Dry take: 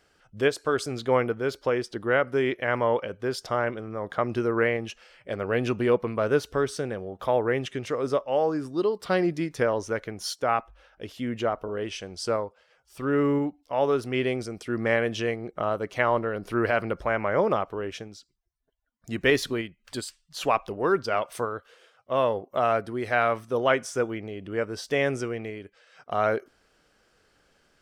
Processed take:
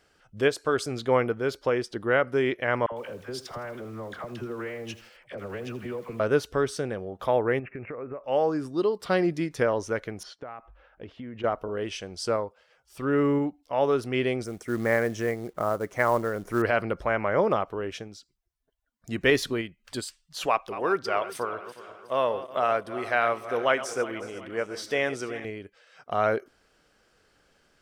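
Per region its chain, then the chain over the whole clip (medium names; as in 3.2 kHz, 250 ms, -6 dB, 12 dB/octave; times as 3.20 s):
2.86–6.20 s: compression 4:1, threshold -33 dBFS + phase dispersion lows, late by 63 ms, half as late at 850 Hz + bit-crushed delay 81 ms, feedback 55%, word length 8-bit, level -13.5 dB
7.59–8.24 s: Chebyshev low-pass 2.6 kHz, order 8 + compression 12:1, threshold -32 dBFS
10.23–11.44 s: low-pass 2.2 kHz + compression 12:1, threshold -35 dBFS
14.44–16.62 s: high-order bell 3.5 kHz -13 dB 1.1 oct + companded quantiser 6-bit
20.46–25.45 s: backward echo that repeats 183 ms, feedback 65%, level -13 dB + bass shelf 240 Hz -11 dB
whole clip: none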